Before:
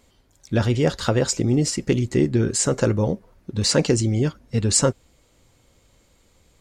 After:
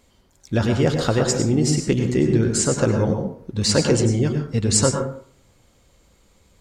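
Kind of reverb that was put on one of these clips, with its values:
dense smooth reverb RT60 0.55 s, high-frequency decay 0.45×, pre-delay 85 ms, DRR 4 dB

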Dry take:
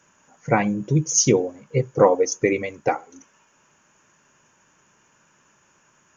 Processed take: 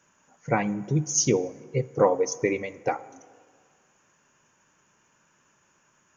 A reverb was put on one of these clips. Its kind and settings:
dense smooth reverb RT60 1.9 s, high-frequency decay 0.5×, DRR 17.5 dB
level −5 dB

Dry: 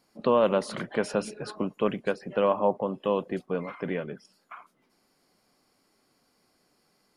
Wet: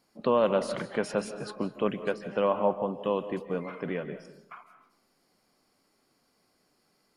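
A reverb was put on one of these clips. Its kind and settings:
comb and all-pass reverb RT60 0.74 s, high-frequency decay 0.55×, pre-delay 115 ms, DRR 11 dB
level −2 dB

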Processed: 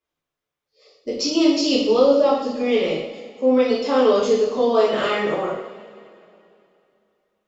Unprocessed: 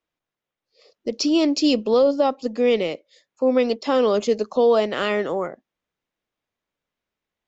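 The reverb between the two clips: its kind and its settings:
coupled-rooms reverb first 0.72 s, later 2.9 s, from −18 dB, DRR −8 dB
level −6.5 dB

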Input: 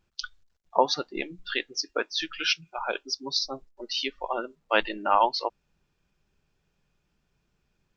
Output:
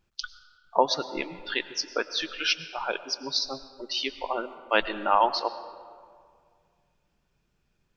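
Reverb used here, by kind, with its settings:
comb and all-pass reverb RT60 2.1 s, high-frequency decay 0.55×, pre-delay 65 ms, DRR 13.5 dB

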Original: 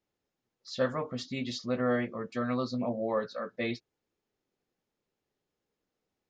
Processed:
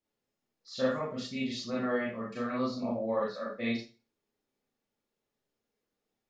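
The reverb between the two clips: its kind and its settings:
four-comb reverb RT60 0.33 s, combs from 27 ms, DRR −5 dB
level −6.5 dB

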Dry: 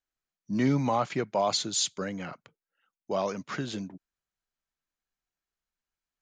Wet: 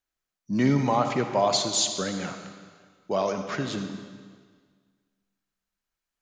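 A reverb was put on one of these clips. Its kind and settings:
comb and all-pass reverb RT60 1.7 s, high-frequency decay 0.95×, pre-delay 20 ms, DRR 6.5 dB
level +3 dB

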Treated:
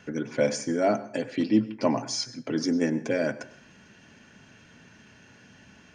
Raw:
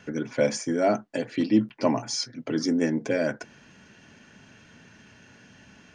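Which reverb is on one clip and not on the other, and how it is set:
dense smooth reverb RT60 0.52 s, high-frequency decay 0.7×, pre-delay 85 ms, DRR 15.5 dB
level −1 dB

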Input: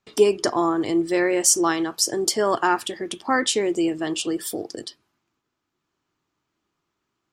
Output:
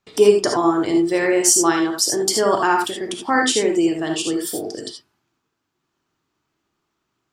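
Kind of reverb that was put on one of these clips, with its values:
reverb whose tail is shaped and stops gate 100 ms rising, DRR 2.5 dB
level +1.5 dB

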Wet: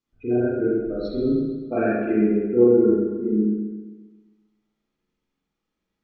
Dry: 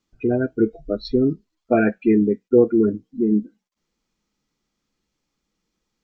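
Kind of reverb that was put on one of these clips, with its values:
spring reverb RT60 1.3 s, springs 33/44 ms, chirp 35 ms, DRR −9 dB
level −12 dB

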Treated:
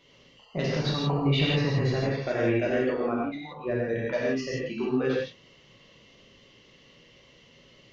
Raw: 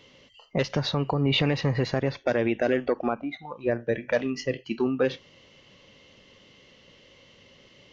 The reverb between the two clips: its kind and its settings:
reverb whose tail is shaped and stops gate 190 ms flat, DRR −5.5 dB
level −7.5 dB

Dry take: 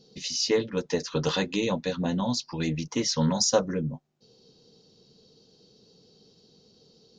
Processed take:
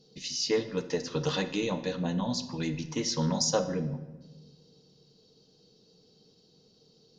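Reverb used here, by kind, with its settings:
rectangular room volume 740 cubic metres, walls mixed, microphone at 0.52 metres
level −4 dB

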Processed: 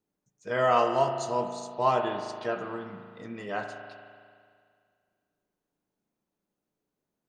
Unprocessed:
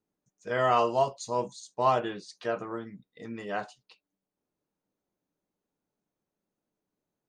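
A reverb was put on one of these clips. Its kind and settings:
spring reverb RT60 2.1 s, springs 37 ms, chirp 50 ms, DRR 5 dB

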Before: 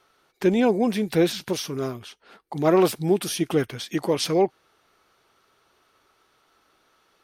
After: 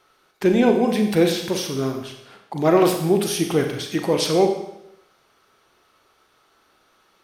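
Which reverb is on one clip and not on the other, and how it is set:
four-comb reverb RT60 0.81 s, combs from 30 ms, DRR 4 dB
level +2 dB

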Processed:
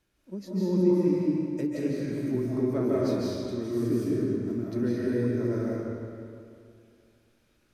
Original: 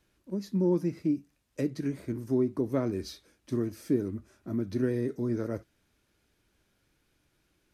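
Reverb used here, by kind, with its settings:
comb and all-pass reverb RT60 2.4 s, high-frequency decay 0.8×, pre-delay 115 ms, DRR −7 dB
level −4 dB

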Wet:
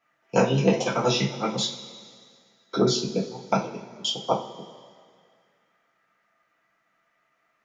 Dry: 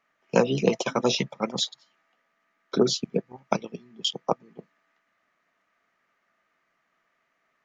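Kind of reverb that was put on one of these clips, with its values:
coupled-rooms reverb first 0.3 s, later 2.1 s, from −18 dB, DRR −6 dB
level −4.5 dB

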